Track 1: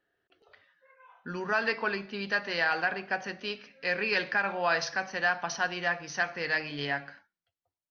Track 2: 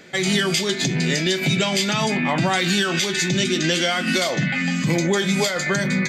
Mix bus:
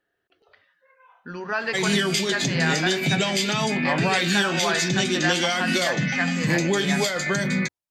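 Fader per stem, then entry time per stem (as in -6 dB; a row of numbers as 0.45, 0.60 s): +1.5, -2.5 dB; 0.00, 1.60 s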